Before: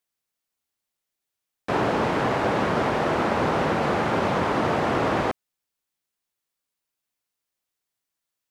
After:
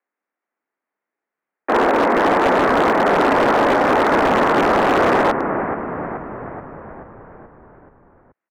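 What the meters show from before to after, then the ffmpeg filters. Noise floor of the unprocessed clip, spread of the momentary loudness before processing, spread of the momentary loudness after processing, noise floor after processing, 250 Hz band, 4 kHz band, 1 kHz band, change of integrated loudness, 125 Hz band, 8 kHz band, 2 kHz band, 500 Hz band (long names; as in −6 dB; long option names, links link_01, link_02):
−85 dBFS, 3 LU, 16 LU, below −85 dBFS, +7.0 dB, +5.5 dB, +9.0 dB, +7.5 dB, −1.0 dB, can't be measured, +8.5 dB, +8.5 dB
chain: -filter_complex "[0:a]highpass=frequency=170:width_type=q:width=0.5412,highpass=frequency=170:width_type=q:width=1.307,lowpass=frequency=2000:width_type=q:width=0.5176,lowpass=frequency=2000:width_type=q:width=0.7071,lowpass=frequency=2000:width_type=q:width=1.932,afreqshift=59,asplit=8[link_01][link_02][link_03][link_04][link_05][link_06][link_07][link_08];[link_02]adelay=429,afreqshift=-44,volume=-8dB[link_09];[link_03]adelay=858,afreqshift=-88,volume=-12.7dB[link_10];[link_04]adelay=1287,afreqshift=-132,volume=-17.5dB[link_11];[link_05]adelay=1716,afreqshift=-176,volume=-22.2dB[link_12];[link_06]adelay=2145,afreqshift=-220,volume=-26.9dB[link_13];[link_07]adelay=2574,afreqshift=-264,volume=-31.7dB[link_14];[link_08]adelay=3003,afreqshift=-308,volume=-36.4dB[link_15];[link_01][link_09][link_10][link_11][link_12][link_13][link_14][link_15]amix=inputs=8:normalize=0,aeval=exprs='0.133*(abs(mod(val(0)/0.133+3,4)-2)-1)':channel_layout=same,volume=8.5dB"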